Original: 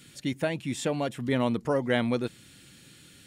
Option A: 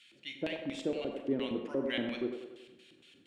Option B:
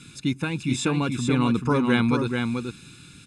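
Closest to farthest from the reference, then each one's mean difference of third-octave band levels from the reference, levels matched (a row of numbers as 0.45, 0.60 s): B, A; 5.5, 8.0 dB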